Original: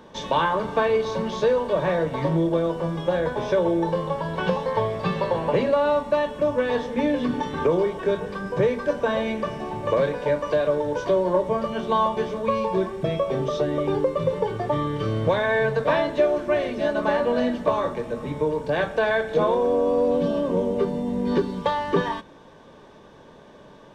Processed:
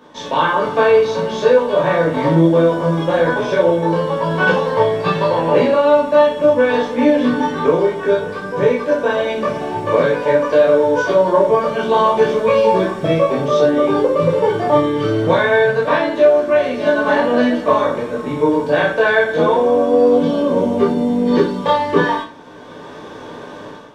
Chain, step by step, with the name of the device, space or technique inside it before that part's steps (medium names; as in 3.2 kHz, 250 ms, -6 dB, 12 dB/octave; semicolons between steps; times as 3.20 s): far laptop microphone (reverberation RT60 0.40 s, pre-delay 11 ms, DRR -5 dB; high-pass 150 Hz 6 dB/octave; level rider); trim -1 dB